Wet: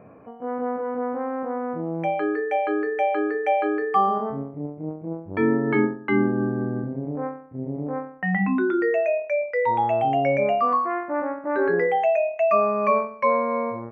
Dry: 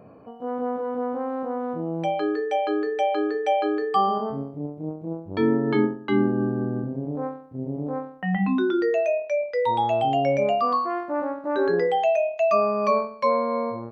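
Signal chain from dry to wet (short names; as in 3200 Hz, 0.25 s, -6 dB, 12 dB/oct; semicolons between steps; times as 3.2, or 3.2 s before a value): resonant high shelf 2900 Hz -10.5 dB, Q 3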